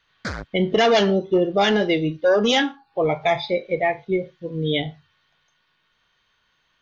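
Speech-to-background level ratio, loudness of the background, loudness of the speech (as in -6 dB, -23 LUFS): 12.0 dB, -33.0 LUFS, -21.0 LUFS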